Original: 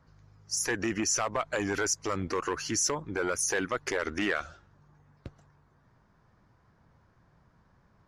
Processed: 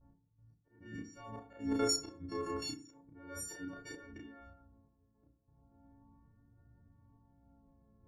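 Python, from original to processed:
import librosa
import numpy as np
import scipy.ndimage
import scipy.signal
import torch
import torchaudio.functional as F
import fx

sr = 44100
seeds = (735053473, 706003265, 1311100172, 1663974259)

y = fx.freq_snap(x, sr, grid_st=4)
y = fx.vibrato(y, sr, rate_hz=0.34, depth_cents=31.0)
y = fx.tilt_shelf(y, sr, db=9.0, hz=750.0)
y = fx.auto_swell(y, sr, attack_ms=770.0)
y = fx.level_steps(y, sr, step_db=13)
y = fx.auto_swell(y, sr, attack_ms=431.0)
y = fx.env_lowpass(y, sr, base_hz=660.0, full_db=-40.0)
y = fx.tremolo_random(y, sr, seeds[0], hz=3.5, depth_pct=55)
y = fx.doubler(y, sr, ms=33.0, db=-2.5)
y = fx.rev_fdn(y, sr, rt60_s=0.45, lf_ratio=1.2, hf_ratio=0.55, size_ms=20.0, drr_db=5.0)
y = F.gain(torch.from_numpy(y), -1.0).numpy()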